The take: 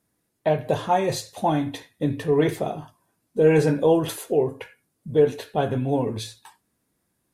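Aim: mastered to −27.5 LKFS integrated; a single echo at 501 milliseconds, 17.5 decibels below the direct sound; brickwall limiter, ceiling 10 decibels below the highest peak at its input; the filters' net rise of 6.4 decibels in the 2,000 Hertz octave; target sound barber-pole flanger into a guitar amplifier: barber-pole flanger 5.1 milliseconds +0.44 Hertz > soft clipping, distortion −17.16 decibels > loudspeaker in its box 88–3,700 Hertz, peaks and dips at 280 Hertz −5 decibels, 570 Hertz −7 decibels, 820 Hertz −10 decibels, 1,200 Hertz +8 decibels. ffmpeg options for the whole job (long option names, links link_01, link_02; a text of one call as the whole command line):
ffmpeg -i in.wav -filter_complex "[0:a]equalizer=frequency=2000:width_type=o:gain=7.5,alimiter=limit=-15.5dB:level=0:latency=1,aecho=1:1:501:0.133,asplit=2[link_01][link_02];[link_02]adelay=5.1,afreqshift=0.44[link_03];[link_01][link_03]amix=inputs=2:normalize=1,asoftclip=threshold=-19.5dB,highpass=88,equalizer=frequency=280:width_type=q:width=4:gain=-5,equalizer=frequency=570:width_type=q:width=4:gain=-7,equalizer=frequency=820:width_type=q:width=4:gain=-10,equalizer=frequency=1200:width_type=q:width=4:gain=8,lowpass=frequency=3700:width=0.5412,lowpass=frequency=3700:width=1.3066,volume=6dB" out.wav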